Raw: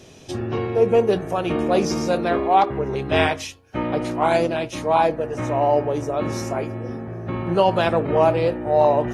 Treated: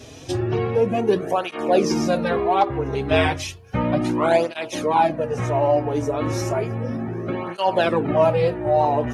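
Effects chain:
0:03.26–0:04.57: low-shelf EQ 150 Hz +8 dB
in parallel at +3 dB: downward compressor, threshold −29 dBFS, peak gain reduction 16.5 dB
on the sum: through-zero flanger with one copy inverted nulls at 0.33 Hz, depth 5.8 ms

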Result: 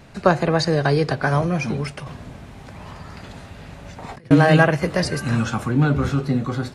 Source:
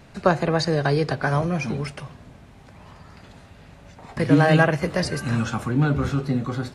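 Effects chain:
0:02.04–0:04.31: compressor whose output falls as the input rises −38 dBFS, ratio −1
level +2.5 dB

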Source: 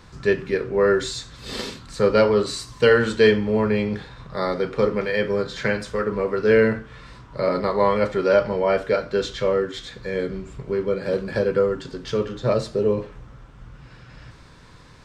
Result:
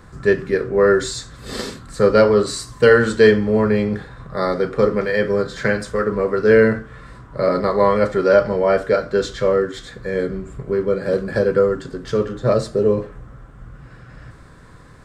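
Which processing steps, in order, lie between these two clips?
flat-topped bell 3,800 Hz −9 dB
notch filter 910 Hz, Q 8.3
dynamic equaliser 5,100 Hz, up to +8 dB, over −49 dBFS, Q 1.1
level +4 dB

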